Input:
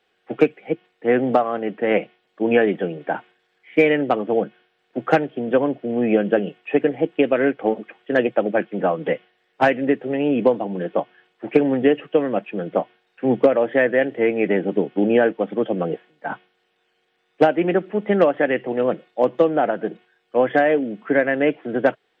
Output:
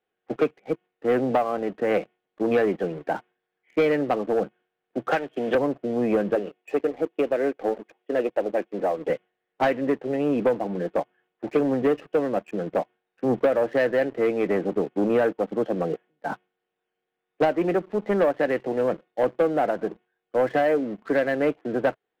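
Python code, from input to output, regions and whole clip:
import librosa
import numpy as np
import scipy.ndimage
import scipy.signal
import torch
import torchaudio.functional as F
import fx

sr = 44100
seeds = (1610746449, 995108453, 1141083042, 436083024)

y = fx.chain(x, sr, fx.tilt_eq(slope=4.0),
    fx.band_squash(depth_pct=100), at=(5.11, 5.55))
y = fx.chain(y, sr, fx.highpass(hz=300.0, slope=12),
    fx.peak_eq(hz=1400.0, db=-7.0, octaves=1.1),
    fx.notch(hz=3100.0, q=25.0), at=(6.35, 9.1))
y = fx.lowpass(y, sr, hz=1200.0, slope=6)
y = fx.dynamic_eq(y, sr, hz=210.0, q=0.74, threshold_db=-28.0, ratio=4.0, max_db=-4)
y = fx.leveller(y, sr, passes=2)
y = y * librosa.db_to_amplitude(-7.5)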